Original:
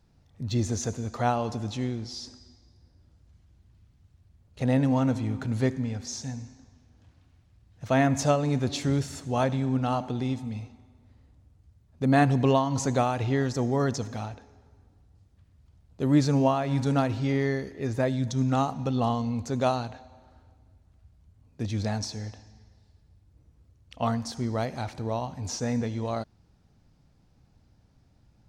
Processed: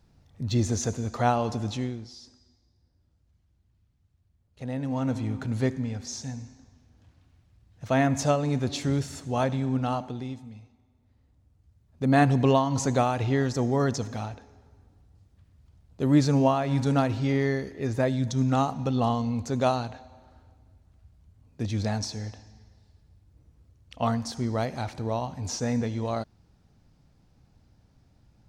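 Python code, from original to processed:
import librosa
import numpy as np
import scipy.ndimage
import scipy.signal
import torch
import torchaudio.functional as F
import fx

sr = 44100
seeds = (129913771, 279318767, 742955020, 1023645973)

y = fx.gain(x, sr, db=fx.line((1.73, 2.0), (2.18, -9.0), (4.76, -9.0), (5.18, -0.5), (9.88, -0.5), (10.62, -11.5), (12.23, 1.0)))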